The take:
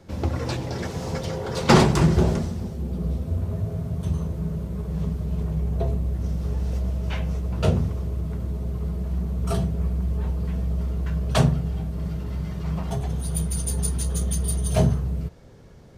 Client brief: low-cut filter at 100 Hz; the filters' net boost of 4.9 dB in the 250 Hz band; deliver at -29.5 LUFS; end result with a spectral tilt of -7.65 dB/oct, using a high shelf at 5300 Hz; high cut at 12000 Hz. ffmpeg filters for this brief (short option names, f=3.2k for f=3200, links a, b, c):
-af "highpass=100,lowpass=12k,equalizer=f=250:t=o:g=8,highshelf=f=5.3k:g=-8,volume=-5dB"